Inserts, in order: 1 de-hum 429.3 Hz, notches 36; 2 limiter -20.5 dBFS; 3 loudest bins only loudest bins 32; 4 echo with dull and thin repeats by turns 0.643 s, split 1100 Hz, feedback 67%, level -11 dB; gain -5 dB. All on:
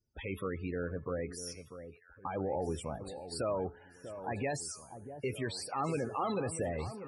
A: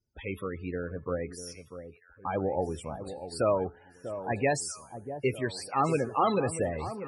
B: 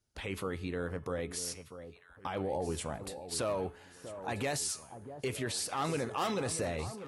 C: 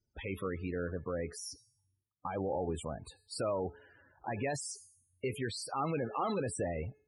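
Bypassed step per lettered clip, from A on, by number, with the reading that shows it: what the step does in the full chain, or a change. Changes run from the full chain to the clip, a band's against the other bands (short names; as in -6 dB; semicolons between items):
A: 2, mean gain reduction 3.0 dB; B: 3, 8 kHz band +6.5 dB; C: 4, echo-to-direct -12.0 dB to none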